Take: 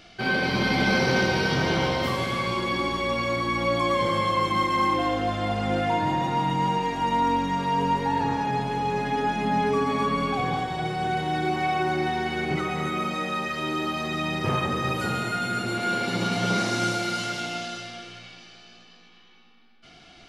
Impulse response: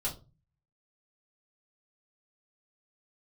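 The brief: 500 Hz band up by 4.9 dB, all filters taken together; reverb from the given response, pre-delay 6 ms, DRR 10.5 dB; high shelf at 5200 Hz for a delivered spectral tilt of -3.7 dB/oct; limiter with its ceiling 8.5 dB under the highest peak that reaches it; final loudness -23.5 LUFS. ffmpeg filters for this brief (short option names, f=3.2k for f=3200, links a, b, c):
-filter_complex "[0:a]equalizer=f=500:t=o:g=6,highshelf=f=5.2k:g=5,alimiter=limit=-17dB:level=0:latency=1,asplit=2[a][b];[1:a]atrim=start_sample=2205,adelay=6[c];[b][c]afir=irnorm=-1:irlink=0,volume=-13.5dB[d];[a][d]amix=inputs=2:normalize=0,volume=2dB"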